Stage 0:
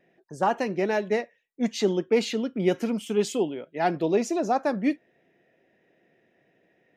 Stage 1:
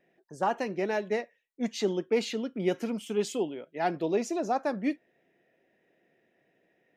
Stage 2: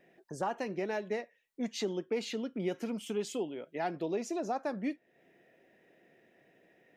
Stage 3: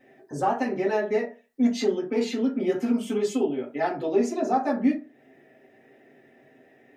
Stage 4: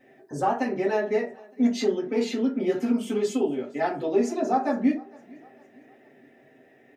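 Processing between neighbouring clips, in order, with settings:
peaking EQ 79 Hz -4 dB 2.3 oct; trim -4 dB
compression 2:1, threshold -45 dBFS, peak gain reduction 13 dB; trim +5 dB
reverberation RT60 0.35 s, pre-delay 4 ms, DRR -7.5 dB
feedback delay 457 ms, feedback 46%, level -24 dB

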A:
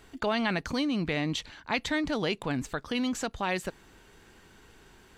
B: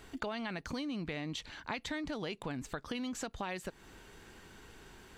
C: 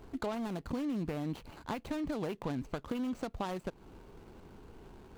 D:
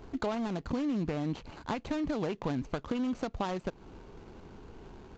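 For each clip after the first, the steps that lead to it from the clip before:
compression, threshold -37 dBFS, peak gain reduction 13 dB; trim +1 dB
median filter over 25 samples; trim +4 dB
resampled via 16 kHz; trim +3.5 dB

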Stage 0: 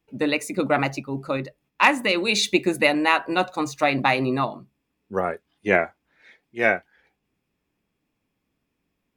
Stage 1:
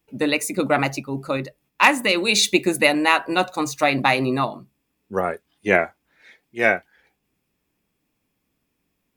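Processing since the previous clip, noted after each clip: treble shelf 6.9 kHz +10 dB; trim +1.5 dB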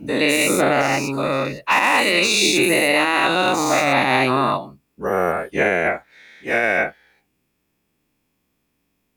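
every event in the spectrogram widened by 240 ms; peak limiter -4.5 dBFS, peak gain reduction 10.5 dB; trim -2.5 dB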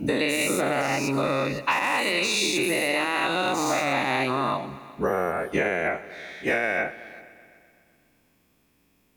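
compression 12:1, threshold -26 dBFS, peak gain reduction 14 dB; multi-head delay 126 ms, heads all three, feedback 44%, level -22.5 dB; trim +5 dB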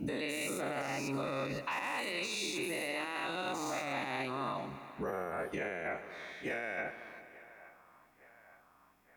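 band-passed feedback delay 868 ms, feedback 72%, band-pass 1.1 kHz, level -23 dB; peak limiter -20.5 dBFS, peak gain reduction 8.5 dB; trim -7.5 dB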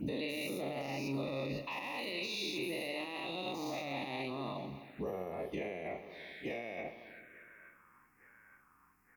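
touch-sensitive phaser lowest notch 580 Hz, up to 1.5 kHz, full sweep at -40.5 dBFS; doubling 43 ms -12.5 dB

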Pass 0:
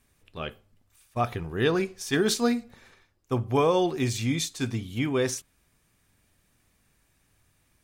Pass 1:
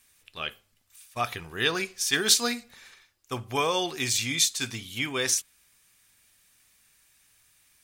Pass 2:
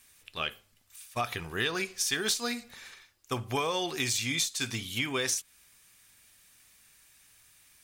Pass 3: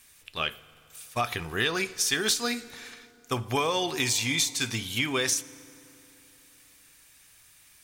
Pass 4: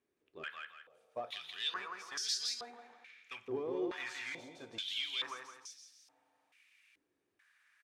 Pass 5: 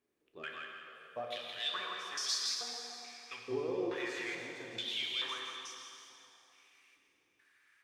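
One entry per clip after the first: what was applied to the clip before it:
tilt shelf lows -9.5 dB, about 1.1 kHz
in parallel at -9 dB: one-sided clip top -23 dBFS; on the sum: compression 6:1, threshold -27 dBFS, peak gain reduction 13 dB
FDN reverb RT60 3.3 s, high-frequency decay 0.6×, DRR 18 dB; trim +3.5 dB
overload inside the chain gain 23.5 dB; feedback delay 167 ms, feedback 35%, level -4 dB; step-sequenced band-pass 2.3 Hz 370–5000 Hz; trim -2 dB
plate-style reverb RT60 2.9 s, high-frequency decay 0.9×, DRR 1.5 dB

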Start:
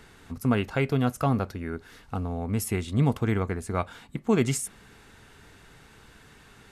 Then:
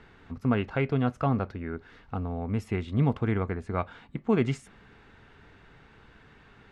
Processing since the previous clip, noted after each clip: low-pass 2.9 kHz 12 dB/octave; trim -1.5 dB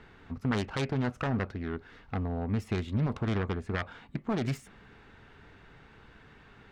self-modulated delay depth 0.53 ms; peak limiter -20 dBFS, peak gain reduction 8 dB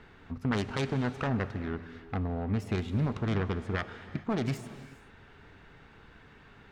gated-style reverb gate 450 ms flat, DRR 11.5 dB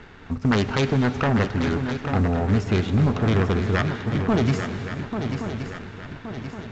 shuffle delay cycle 1122 ms, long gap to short 3:1, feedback 45%, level -9 dB; waveshaping leveller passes 1; trim +7 dB; A-law 128 kbps 16 kHz

